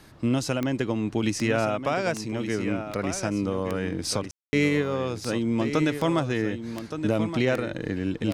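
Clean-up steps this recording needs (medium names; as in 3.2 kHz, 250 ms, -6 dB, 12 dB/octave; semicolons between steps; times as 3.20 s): de-click; room tone fill 4.31–4.53 s; inverse comb 1171 ms -9.5 dB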